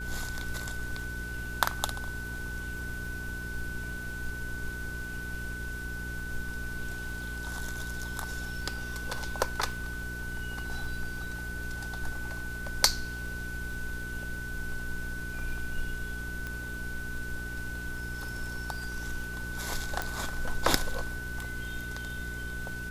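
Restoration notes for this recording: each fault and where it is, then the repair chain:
crackle 46 per s -43 dBFS
hum 60 Hz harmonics 7 -40 dBFS
whine 1.5 kHz -38 dBFS
16.47 s: pop -22 dBFS
20.02 s: pop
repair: de-click; de-hum 60 Hz, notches 7; band-stop 1.5 kHz, Q 30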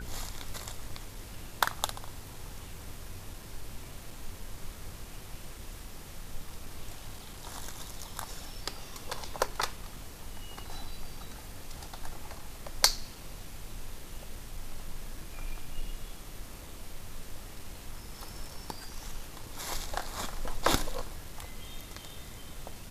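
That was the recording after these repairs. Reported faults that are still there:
16.47 s: pop

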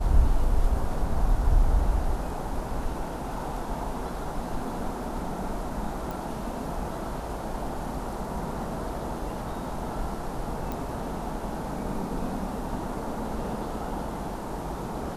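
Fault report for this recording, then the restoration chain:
6.11 s: pop
10.72 s: pop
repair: de-click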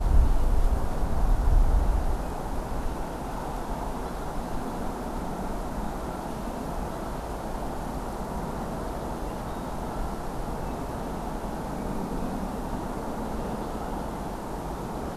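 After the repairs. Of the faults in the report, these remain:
nothing left

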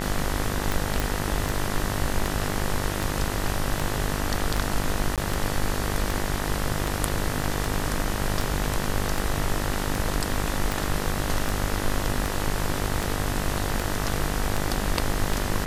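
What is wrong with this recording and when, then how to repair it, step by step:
buzz 50 Hz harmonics 40 -30 dBFS
tick 78 rpm
1.00 s: pop
5.16–5.18 s: dropout 17 ms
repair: de-click; de-hum 50 Hz, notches 40; interpolate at 5.16 s, 17 ms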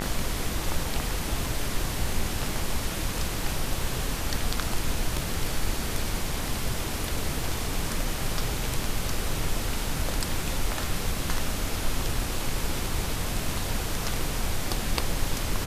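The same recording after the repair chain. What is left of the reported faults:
nothing left

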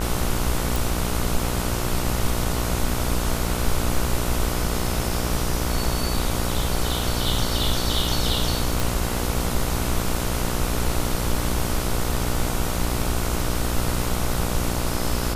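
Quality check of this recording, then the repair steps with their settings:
buzz 60 Hz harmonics 25 -27 dBFS
0.76 s: pop
8.80 s: pop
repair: de-click; de-hum 60 Hz, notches 25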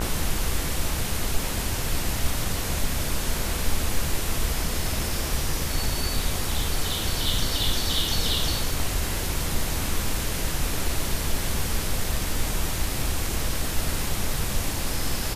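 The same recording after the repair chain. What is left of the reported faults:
nothing left

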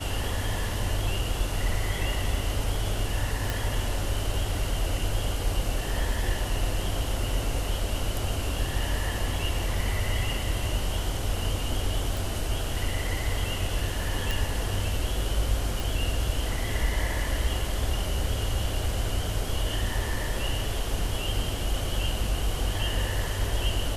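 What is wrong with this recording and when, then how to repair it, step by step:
3.50 s: pop
12.17 s: pop
14.31 s: pop
15.80 s: pop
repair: de-click

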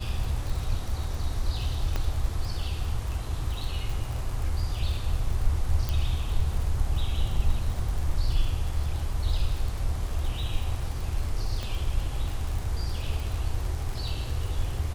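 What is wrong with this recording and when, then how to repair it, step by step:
crackle 52 per s -32 dBFS
1.96 s: pop -15 dBFS
5.89 s: pop
11.63 s: pop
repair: de-click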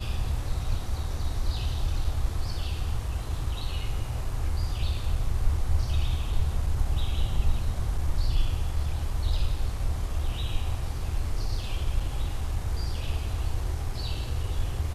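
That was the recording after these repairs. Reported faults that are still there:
5.89 s: pop
11.63 s: pop

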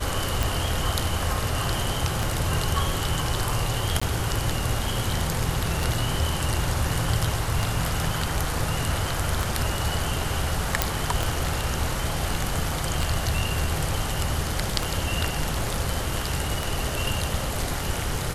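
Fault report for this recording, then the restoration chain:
tick 33 1/3 rpm
4.00–4.01 s: dropout 15 ms
10.82 s: pop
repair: de-click; interpolate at 4.00 s, 15 ms

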